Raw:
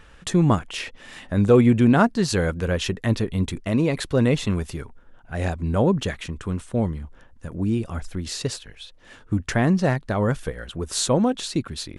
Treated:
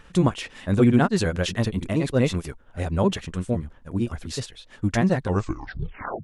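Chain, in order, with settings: tape stop on the ending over 2.06 s; granular stretch 0.52×, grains 128 ms

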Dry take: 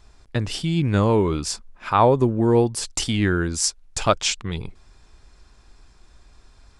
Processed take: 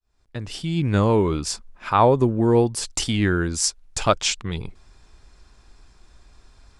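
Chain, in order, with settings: fade-in on the opening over 0.94 s; 1.09–1.50 s: tape noise reduction on one side only decoder only

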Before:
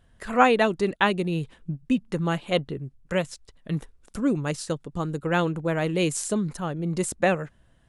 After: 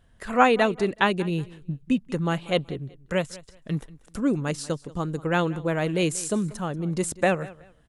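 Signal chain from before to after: feedback delay 187 ms, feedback 24%, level -20 dB

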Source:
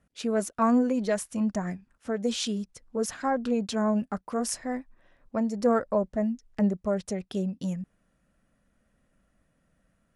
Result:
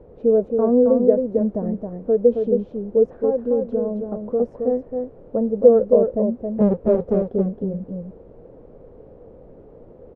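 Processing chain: 6.60–7.28 s: square wave that keeps the level; in parallel at -2 dB: peak limiter -20.5 dBFS, peak gain reduction 8 dB; 3.19–4.40 s: on the sum: compression 2.5:1, threshold -26 dBFS, peak gain reduction 6.5 dB; added noise pink -45 dBFS; resonant low-pass 490 Hz, resonance Q 4.9; on a send: delay 270 ms -5 dB; on the sum: trim -2 dB

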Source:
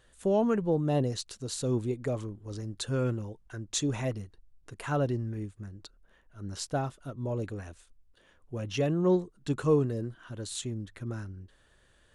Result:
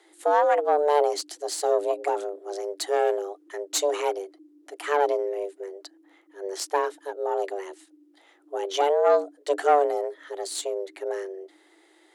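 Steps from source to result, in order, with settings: valve stage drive 21 dB, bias 0.7; frequency shift +290 Hz; trim +9 dB

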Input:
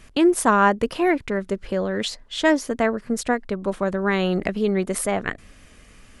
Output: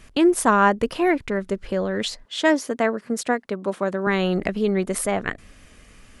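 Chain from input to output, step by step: 2.25–4.07 s: high-pass 190 Hz 12 dB/octave

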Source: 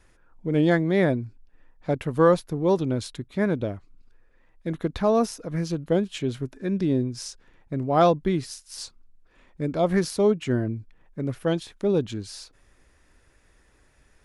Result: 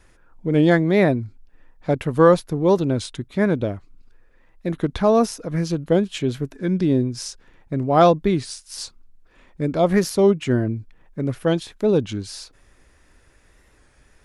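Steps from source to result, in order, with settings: warped record 33 1/3 rpm, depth 100 cents; trim +4.5 dB

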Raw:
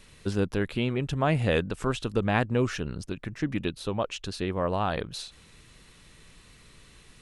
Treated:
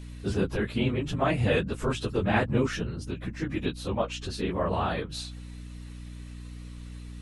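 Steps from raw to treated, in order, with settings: phase randomisation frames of 50 ms; hum 60 Hz, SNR 11 dB

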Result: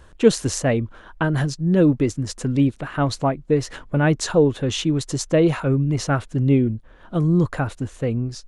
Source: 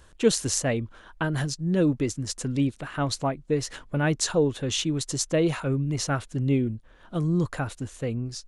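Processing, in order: treble shelf 3 kHz -9 dB; trim +6.5 dB

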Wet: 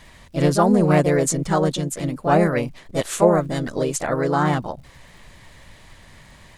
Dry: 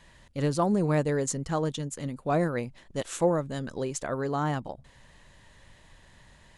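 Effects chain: harmony voices +3 st -4 dB; crackle 130 per s -55 dBFS; trim +7.5 dB

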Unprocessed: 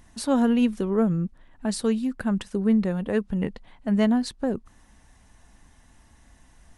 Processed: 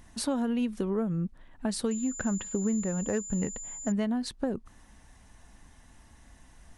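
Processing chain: compression 6:1, threshold -26 dBFS, peak gain reduction 10 dB; 1.91–3.92 s: class-D stage that switches slowly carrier 7.1 kHz

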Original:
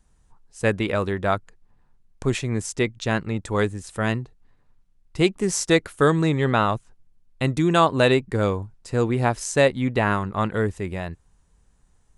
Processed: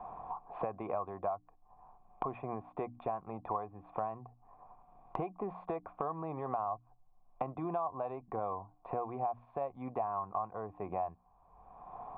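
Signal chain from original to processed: hum notches 60/120/180/240/300 Hz; compression 2:1, threshold -30 dBFS, peak gain reduction 10 dB; peak limiter -21 dBFS, peak gain reduction 7 dB; cascade formant filter a; three bands compressed up and down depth 100%; trim +10 dB

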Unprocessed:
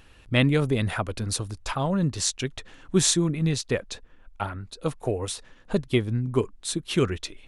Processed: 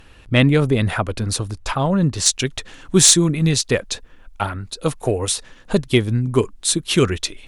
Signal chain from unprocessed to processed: treble shelf 3.4 kHz -2.5 dB, from 2.26 s +6.5 dB; sine folder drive 6 dB, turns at 1 dBFS; trim -3 dB

